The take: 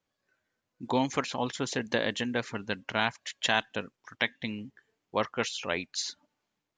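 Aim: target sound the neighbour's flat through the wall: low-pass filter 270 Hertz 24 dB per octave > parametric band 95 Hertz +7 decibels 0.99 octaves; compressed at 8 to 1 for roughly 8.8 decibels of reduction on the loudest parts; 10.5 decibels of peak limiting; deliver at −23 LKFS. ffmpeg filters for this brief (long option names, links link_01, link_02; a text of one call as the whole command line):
ffmpeg -i in.wav -af "acompressor=threshold=-31dB:ratio=8,alimiter=level_in=1.5dB:limit=-24dB:level=0:latency=1,volume=-1.5dB,lowpass=frequency=270:width=0.5412,lowpass=frequency=270:width=1.3066,equalizer=frequency=95:width_type=o:width=0.99:gain=7,volume=22.5dB" out.wav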